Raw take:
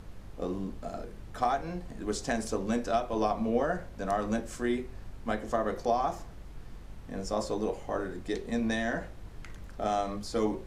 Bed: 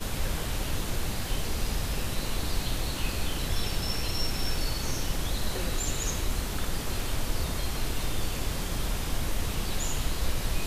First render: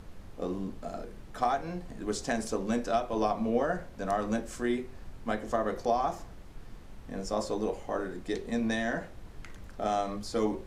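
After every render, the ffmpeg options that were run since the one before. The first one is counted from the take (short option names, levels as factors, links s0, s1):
-af "bandreject=f=50:t=h:w=4,bandreject=f=100:t=h:w=4,bandreject=f=150:t=h:w=4"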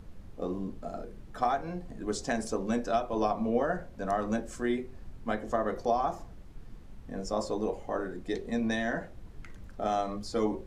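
-af "afftdn=nr=6:nf=-48"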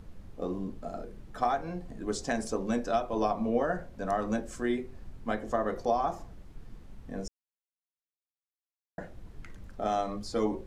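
-filter_complex "[0:a]asplit=3[s0][s1][s2];[s0]atrim=end=7.28,asetpts=PTS-STARTPTS,afade=t=out:st=7.276:d=0.004:c=hsin[s3];[s1]atrim=start=7.28:end=8.98,asetpts=PTS-STARTPTS,volume=0[s4];[s2]atrim=start=8.98,asetpts=PTS-STARTPTS,afade=t=in:d=0.004:c=hsin[s5];[s3][s4][s5]concat=n=3:v=0:a=1"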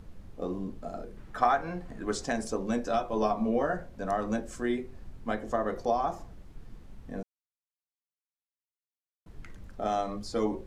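-filter_complex "[0:a]asettb=1/sr,asplit=3[s0][s1][s2];[s0]atrim=end=1.174[s3];[s1]atrim=start=1.17:end=2.26,asetpts=PTS-STARTPTS,afade=t=in:d=0.004:c=qsin,afade=t=out:st=1.086:d=0.004:c=qsin,equalizer=f=1500:w=0.8:g=7.5[s4];[s2]atrim=start=2.256[s5];[s3][s4]acrossfade=d=0.004:c1=hsin:c2=qsin[s6];[s6][s5]acrossfade=d=0.004:c1=qsin:c2=hsin,asettb=1/sr,asplit=3[s7][s8][s9];[s7]atrim=end=2.844[s10];[s8]atrim=start=2.84:end=3.75,asetpts=PTS-STARTPTS,afade=t=in:d=0.004:c=qsin,afade=t=out:st=0.906:d=0.004:c=qsin,asplit=2[s11][s12];[s12]adelay=14,volume=0.473[s13];[s11][s13]amix=inputs=2:normalize=0,atrim=end_sample=40131[s14];[s9]atrim=start=3.746[s15];[s10][s14]acrossfade=d=0.004:c1=hsin:c2=qsin[s16];[s16][s15]acrossfade=d=0.004:c1=qsin:c2=hsin,asplit=3[s17][s18][s19];[s17]atrim=end=7.23,asetpts=PTS-STARTPTS,afade=t=out:st=7.226:d=0.004:c=hsin[s20];[s18]atrim=start=7.23:end=9.26,asetpts=PTS-STARTPTS,volume=0[s21];[s19]atrim=start=9.26,asetpts=PTS-STARTPTS,afade=t=in:d=0.004:c=hsin[s22];[s20][s21][s22]concat=n=3:v=0:a=1"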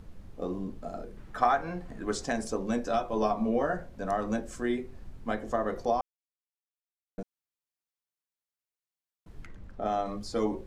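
-filter_complex "[0:a]asettb=1/sr,asplit=3[s0][s1][s2];[s0]atrim=end=9.464[s3];[s1]atrim=start=9.46:end=10.06,asetpts=PTS-STARTPTS,afade=t=in:d=0.004:c=qsin,afade=t=out:st=0.596:d=0.004:c=qsin,lowpass=f=2700:p=1[s4];[s2]atrim=start=10.056[s5];[s3][s4]acrossfade=d=0.004:c1=hsin:c2=qsin[s6];[s6][s5]acrossfade=d=0.004:c1=qsin:c2=hsin,asplit=3[s7][s8][s9];[s7]atrim=end=6.01,asetpts=PTS-STARTPTS,afade=t=out:st=6.006:d=0.004:c=hsin[s10];[s8]atrim=start=6.01:end=7.18,asetpts=PTS-STARTPTS,volume=0[s11];[s9]atrim=start=7.18,asetpts=PTS-STARTPTS,afade=t=in:d=0.004:c=hsin[s12];[s10][s11][s12]concat=n=3:v=0:a=1"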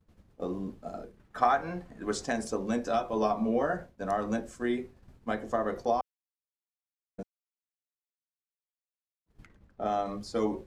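-af "agate=range=0.0224:threshold=0.0158:ratio=3:detection=peak,highpass=f=67:p=1"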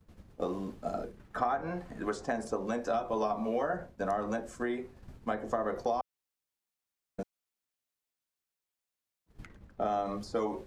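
-filter_complex "[0:a]asplit=2[s0][s1];[s1]alimiter=limit=0.075:level=0:latency=1:release=305,volume=0.891[s2];[s0][s2]amix=inputs=2:normalize=0,acrossover=split=520|1500[s3][s4][s5];[s3]acompressor=threshold=0.0141:ratio=4[s6];[s4]acompressor=threshold=0.0282:ratio=4[s7];[s5]acompressor=threshold=0.00316:ratio=4[s8];[s6][s7][s8]amix=inputs=3:normalize=0"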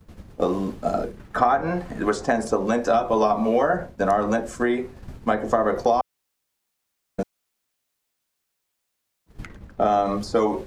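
-af "volume=3.76"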